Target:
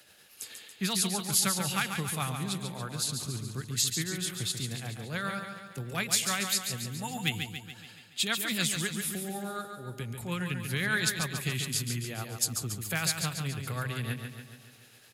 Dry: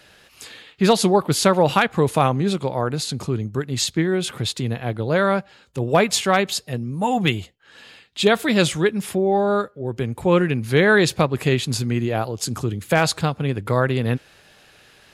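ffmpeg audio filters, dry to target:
ffmpeg -i in.wav -filter_complex "[0:a]highpass=78,aemphasis=mode=production:type=50fm,bandreject=frequency=1000:width=15,acrossover=split=210|1100[link_01][link_02][link_03];[link_02]acompressor=threshold=-38dB:ratio=4[link_04];[link_01][link_04][link_03]amix=inputs=3:normalize=0,tremolo=f=9.5:d=0.41,asplit=2[link_05][link_06];[link_06]aecho=0:1:141|282|423|564|705|846|987:0.473|0.265|0.148|0.0831|0.0465|0.0261|0.0146[link_07];[link_05][link_07]amix=inputs=2:normalize=0,volume=-8.5dB" out.wav

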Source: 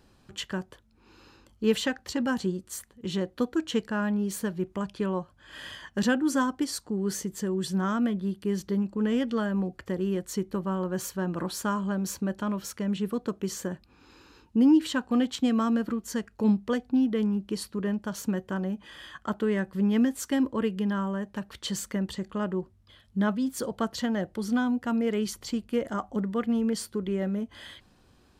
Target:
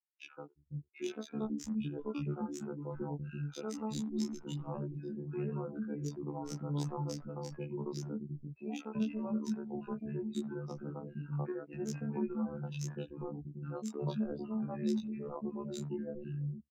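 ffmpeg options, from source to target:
ffmpeg -i in.wav -filter_complex "[0:a]agate=range=-32dB:threshold=-47dB:ratio=16:detection=peak,afftdn=noise_reduction=30:noise_floor=-35,equalizer=frequency=9000:width=1.6:gain=14,acrossover=split=250|750|5900[link_01][link_02][link_03][link_04];[link_01]acompressor=threshold=-38dB:ratio=4[link_05];[link_02]acompressor=threshold=-32dB:ratio=4[link_06];[link_03]acompressor=threshold=-46dB:ratio=4[link_07];[link_04]acompressor=threshold=-35dB:ratio=4[link_08];[link_05][link_06][link_07][link_08]amix=inputs=4:normalize=0,atempo=1.7,flanger=delay=18.5:depth=2.8:speed=0.85,acrossover=split=190|7100[link_09][link_10][link_11];[link_11]acrusher=bits=5:dc=4:mix=0:aa=0.000001[link_12];[link_09][link_10][link_12]amix=inputs=3:normalize=0,afftfilt=real='hypot(re,im)*cos(PI*b)':imag='0':win_size=2048:overlap=0.75,adynamicsmooth=sensitivity=6:basefreq=5300,acrossover=split=300|1800[link_13][link_14][link_15];[link_14]adelay=70[link_16];[link_13]adelay=410[link_17];[link_17][link_16][link_15]amix=inputs=3:normalize=0,asetrate=37084,aresample=44100,atempo=1.18921,volume=4.5dB" out.wav

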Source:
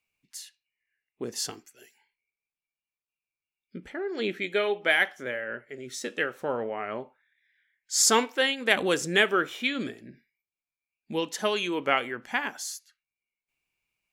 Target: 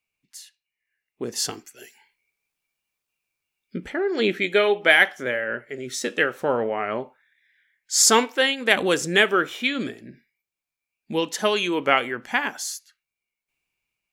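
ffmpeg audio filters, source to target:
ffmpeg -i in.wav -af "dynaudnorm=framelen=660:gausssize=5:maxgain=13.5dB,volume=-1dB" out.wav

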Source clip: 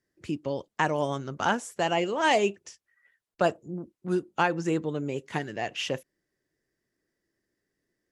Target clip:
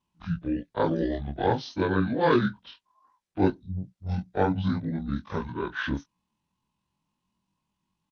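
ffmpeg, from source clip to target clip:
ffmpeg -i in.wav -af "afftfilt=real='re':imag='-im':win_size=2048:overlap=0.75,asetrate=24046,aresample=44100,atempo=1.83401,volume=6dB" out.wav

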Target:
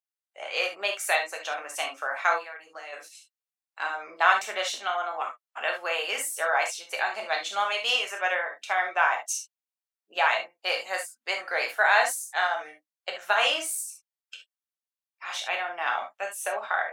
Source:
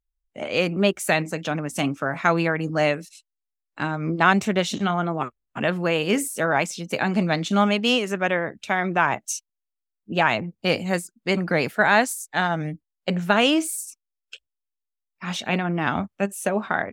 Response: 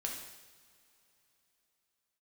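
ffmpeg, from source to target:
-filter_complex "[0:a]highpass=frequency=630:width=0.5412,highpass=frequency=630:width=1.3066,asplit=3[link_01][link_02][link_03];[link_01]afade=type=out:start_time=2.37:duration=0.02[link_04];[link_02]acompressor=threshold=-39dB:ratio=4,afade=type=in:start_time=2.37:duration=0.02,afade=type=out:start_time=2.92:duration=0.02[link_05];[link_03]afade=type=in:start_time=2.92:duration=0.02[link_06];[link_04][link_05][link_06]amix=inputs=3:normalize=0[link_07];[1:a]atrim=start_sample=2205,atrim=end_sample=3528[link_08];[link_07][link_08]afir=irnorm=-1:irlink=0,volume=-1.5dB"

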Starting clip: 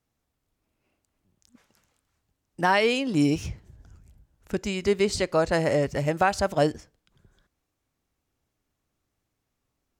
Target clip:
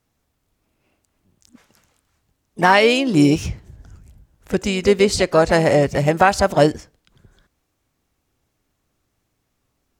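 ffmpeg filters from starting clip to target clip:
ffmpeg -i in.wav -filter_complex "[0:a]asplit=2[link_01][link_02];[link_02]asetrate=55563,aresample=44100,atempo=0.793701,volume=-14dB[link_03];[link_01][link_03]amix=inputs=2:normalize=0,volume=8dB" out.wav

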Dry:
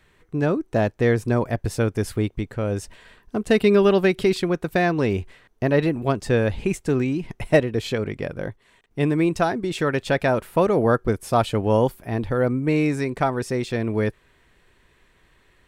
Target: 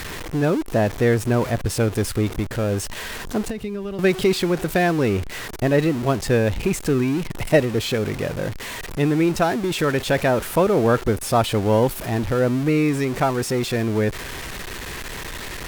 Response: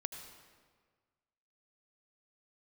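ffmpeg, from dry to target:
-filter_complex "[0:a]aeval=exprs='val(0)+0.5*0.0501*sgn(val(0))':channel_layout=same,asettb=1/sr,asplit=3[link_01][link_02][link_03];[link_01]atrim=end=3.444[link_04];[link_02]atrim=start=3.44:end=3.99,asetpts=PTS-STARTPTS,afade=type=in:duration=0.004:curve=qsin,afade=type=out:start_time=0.546:duration=0.004:curve=qsin,acrossover=split=130[link_05][link_06];[link_06]acompressor=threshold=-29dB:ratio=8[link_07];[link_05][link_07]amix=inputs=2:normalize=0[link_08];[link_03]atrim=start=3.986[link_09];[link_04][link_08]acrossfade=duration=0.004:curve1=hsin:curve2=qsin[link_10];[link_10][link_09]acrossfade=duration=0.004:curve1=qsin:curve2=hsin" -ar 48000 -c:a libopus -b:a 256k

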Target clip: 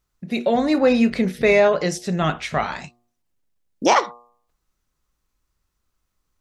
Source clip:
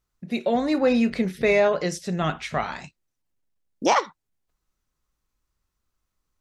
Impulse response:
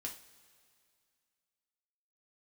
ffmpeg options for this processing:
-af "bandreject=frequency=119.5:width_type=h:width=4,bandreject=frequency=239:width_type=h:width=4,bandreject=frequency=358.5:width_type=h:width=4,bandreject=frequency=478:width_type=h:width=4,bandreject=frequency=597.5:width_type=h:width=4,bandreject=frequency=717:width_type=h:width=4,bandreject=frequency=836.5:width_type=h:width=4,bandreject=frequency=956:width_type=h:width=4,bandreject=frequency=1075.5:width_type=h:width=4,bandreject=frequency=1195:width_type=h:width=4,volume=4dB"

